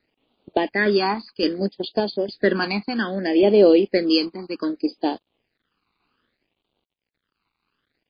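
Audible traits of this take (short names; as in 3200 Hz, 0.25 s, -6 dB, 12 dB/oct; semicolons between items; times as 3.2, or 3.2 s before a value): random-step tremolo; a quantiser's noise floor 12-bit, dither none; phasing stages 12, 0.63 Hz, lowest notch 550–1800 Hz; MP3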